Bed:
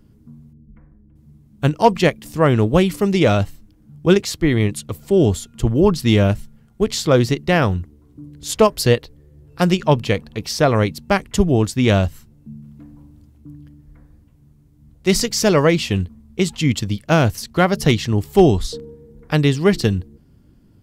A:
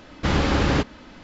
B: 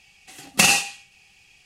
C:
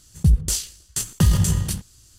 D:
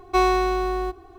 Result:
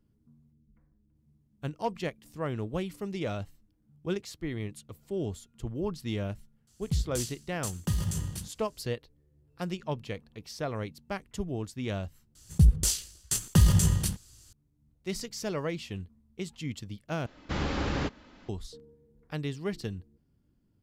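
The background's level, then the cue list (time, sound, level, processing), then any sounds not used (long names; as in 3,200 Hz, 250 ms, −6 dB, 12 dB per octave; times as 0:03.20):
bed −18.5 dB
0:06.67: mix in C −12 dB + high-pass filter 47 Hz
0:12.35: overwrite with C −3.5 dB
0:17.26: overwrite with A −10 dB
not used: B, D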